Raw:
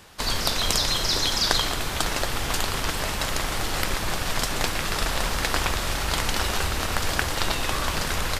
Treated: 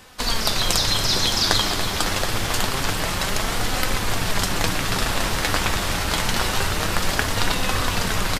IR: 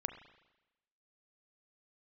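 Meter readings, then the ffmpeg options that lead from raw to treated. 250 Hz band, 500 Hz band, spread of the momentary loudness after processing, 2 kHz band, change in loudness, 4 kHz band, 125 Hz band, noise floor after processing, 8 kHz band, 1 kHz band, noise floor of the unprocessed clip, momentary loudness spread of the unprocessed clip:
+5.0 dB, +3.0 dB, 5 LU, +3.0 dB, +3.0 dB, +3.0 dB, +4.5 dB, -25 dBFS, +3.0 dB, +3.0 dB, -29 dBFS, 5 LU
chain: -filter_complex "[0:a]flanger=delay=3.9:depth=6:regen=53:speed=0.26:shape=sinusoidal,asplit=8[a][b][c][d][e][f][g][h];[b]adelay=283,afreqshift=88,volume=-10.5dB[i];[c]adelay=566,afreqshift=176,volume=-15.2dB[j];[d]adelay=849,afreqshift=264,volume=-20dB[k];[e]adelay=1132,afreqshift=352,volume=-24.7dB[l];[f]adelay=1415,afreqshift=440,volume=-29.4dB[m];[g]adelay=1698,afreqshift=528,volume=-34.2dB[n];[h]adelay=1981,afreqshift=616,volume=-38.9dB[o];[a][i][j][k][l][m][n][o]amix=inputs=8:normalize=0,volume=6.5dB"

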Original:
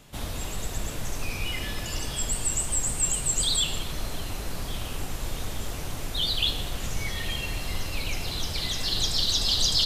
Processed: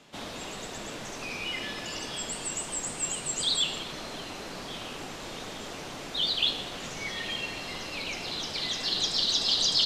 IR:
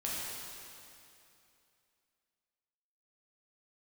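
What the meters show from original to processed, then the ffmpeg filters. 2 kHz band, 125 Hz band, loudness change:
0.0 dB, -12.5 dB, -2.5 dB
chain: -filter_complex "[0:a]acrossover=split=170 7100:gain=0.0794 1 0.126[a][b][c];[a][b][c]amix=inputs=3:normalize=0"

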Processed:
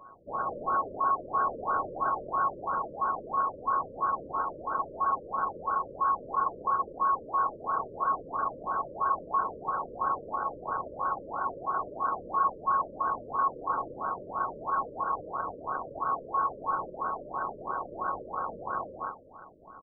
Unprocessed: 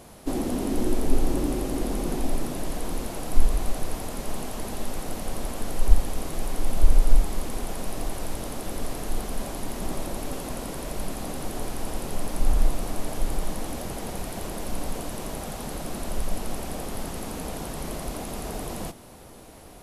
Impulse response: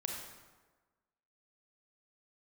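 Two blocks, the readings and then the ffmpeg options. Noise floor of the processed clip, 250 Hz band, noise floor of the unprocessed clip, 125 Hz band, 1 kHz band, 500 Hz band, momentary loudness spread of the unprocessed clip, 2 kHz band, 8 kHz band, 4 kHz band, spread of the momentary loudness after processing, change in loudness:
-48 dBFS, -14.5 dB, -46 dBFS, -18.5 dB, +11.5 dB, -4.0 dB, 7 LU, +0.5 dB, under -40 dB, under -40 dB, 7 LU, +0.5 dB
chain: -filter_complex "[0:a]aeval=exprs='val(0)+0.0355*sin(2*PI*1600*n/s)':c=same,equalizer=f=170:t=o:w=1.6:g=5,aeval=exprs='sgn(val(0))*max(abs(val(0))-0.0335,0)':c=same,aecho=1:1:90.38|209.9:0.316|0.794,asplit=2[a][b];[1:a]atrim=start_sample=2205,asetrate=28224,aresample=44100[c];[b][c]afir=irnorm=-1:irlink=0,volume=-6.5dB[d];[a][d]amix=inputs=2:normalize=0,lowpass=f=2.3k:t=q:w=0.5098,lowpass=f=2.3k:t=q:w=0.6013,lowpass=f=2.3k:t=q:w=0.9,lowpass=f=2.3k:t=q:w=2.563,afreqshift=-2700,afftfilt=real='re*lt(b*sr/1024,600*pow(1600/600,0.5+0.5*sin(2*PI*3*pts/sr)))':imag='im*lt(b*sr/1024,600*pow(1600/600,0.5+0.5*sin(2*PI*3*pts/sr)))':win_size=1024:overlap=0.75,volume=4.5dB"

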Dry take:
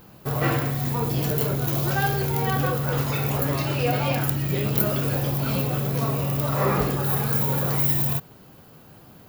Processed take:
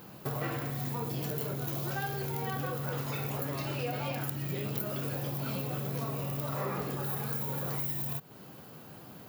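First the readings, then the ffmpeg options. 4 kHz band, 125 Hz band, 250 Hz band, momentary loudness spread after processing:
-10.0 dB, -11.5 dB, -11.0 dB, 4 LU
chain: -af "acompressor=threshold=-32dB:ratio=5,highpass=110"

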